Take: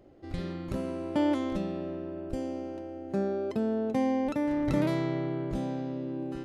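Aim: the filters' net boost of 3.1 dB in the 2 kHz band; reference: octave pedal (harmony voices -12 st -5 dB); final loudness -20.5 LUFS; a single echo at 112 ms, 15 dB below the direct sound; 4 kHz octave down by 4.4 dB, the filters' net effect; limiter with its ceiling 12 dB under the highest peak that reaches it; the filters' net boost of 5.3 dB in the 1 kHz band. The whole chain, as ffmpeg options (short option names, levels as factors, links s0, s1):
-filter_complex "[0:a]equalizer=f=1000:t=o:g=6.5,equalizer=f=2000:t=o:g=3.5,equalizer=f=4000:t=o:g=-8,alimiter=level_in=1.19:limit=0.0631:level=0:latency=1,volume=0.841,aecho=1:1:112:0.178,asplit=2[s0][s1];[s1]asetrate=22050,aresample=44100,atempo=2,volume=0.562[s2];[s0][s2]amix=inputs=2:normalize=0,volume=4.47"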